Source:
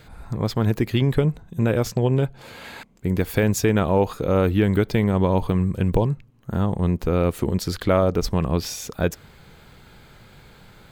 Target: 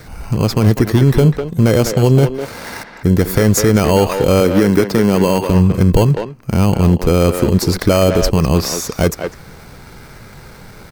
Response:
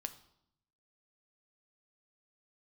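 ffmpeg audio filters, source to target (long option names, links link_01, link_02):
-filter_complex "[0:a]asettb=1/sr,asplit=3[link_01][link_02][link_03];[link_01]atrim=end=4.404[link_04];[link_02]atrim=start=4.4:end=5.5,asetpts=PTS-STARTPTS,afade=type=in:duration=0.004:curve=qsin,afade=type=out:start_time=1.096:duration=0.004:curve=qsin,highpass=160[link_05];[link_03]atrim=start=5.496[link_06];[link_04][link_05]acrossfade=duration=0.004:curve1=hsin:curve2=qsin[link_07];[link_07][link_06]acrossfade=duration=0.004:curve1=qsin:curve2=hsin,asoftclip=type=tanh:threshold=-9dB,acrossover=split=510|3500[link_08][link_09][link_10];[link_09]acrusher=samples=12:mix=1:aa=0.000001[link_11];[link_08][link_11][link_10]amix=inputs=3:normalize=0,asplit=2[link_12][link_13];[link_13]adelay=200,highpass=300,lowpass=3400,asoftclip=type=hard:threshold=-18dB,volume=-7dB[link_14];[link_12][link_14]amix=inputs=2:normalize=0,alimiter=level_in=12dB:limit=-1dB:release=50:level=0:latency=1,volume=-1dB"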